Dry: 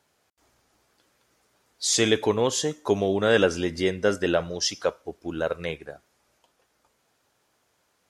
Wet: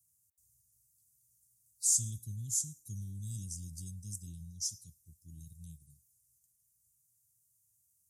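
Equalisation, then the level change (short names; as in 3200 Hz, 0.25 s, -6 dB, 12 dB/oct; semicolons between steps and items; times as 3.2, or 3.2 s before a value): HPF 83 Hz; inverse Chebyshev band-stop 540–1900 Hz, stop band 80 dB; high shelf 6600 Hz +9.5 dB; -2.0 dB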